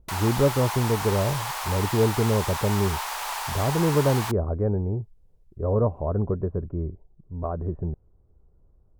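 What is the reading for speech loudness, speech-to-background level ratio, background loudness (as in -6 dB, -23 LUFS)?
-26.0 LUFS, 4.0 dB, -30.0 LUFS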